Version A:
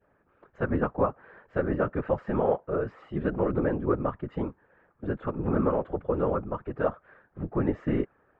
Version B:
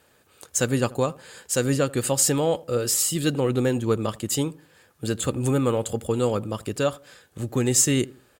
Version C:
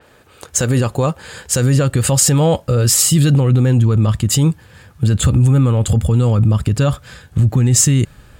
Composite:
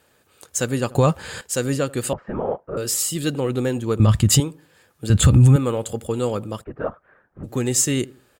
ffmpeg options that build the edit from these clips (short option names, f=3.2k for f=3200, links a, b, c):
-filter_complex "[2:a]asplit=3[a][b][c];[0:a]asplit=2[d][e];[1:a]asplit=6[f][g][h][i][j][k];[f]atrim=end=0.952[l];[a]atrim=start=0.948:end=1.412[m];[g]atrim=start=1.408:end=2.132[n];[d]atrim=start=2.128:end=2.772[o];[h]atrim=start=2.768:end=4.002[p];[b]atrim=start=3.998:end=4.402[q];[i]atrim=start=4.398:end=5.102[r];[c]atrim=start=5.098:end=5.562[s];[j]atrim=start=5.558:end=6.65[t];[e]atrim=start=6.59:end=7.49[u];[k]atrim=start=7.43[v];[l][m]acrossfade=d=0.004:c1=hsin:c2=hsin[w];[w][n]acrossfade=d=0.004:c1=hsin:c2=hsin[x];[x][o]acrossfade=d=0.004:c1=hsin:c2=hsin[y];[y][p]acrossfade=d=0.004:c1=hsin:c2=hsin[z];[z][q]acrossfade=d=0.004:c1=hsin:c2=hsin[aa];[aa][r]acrossfade=d=0.004:c1=hsin:c2=hsin[ab];[ab][s]acrossfade=d=0.004:c1=hsin:c2=hsin[ac];[ac][t]acrossfade=d=0.004:c1=hsin:c2=hsin[ad];[ad][u]acrossfade=d=0.06:c1=tri:c2=tri[ae];[ae][v]acrossfade=d=0.06:c1=tri:c2=tri"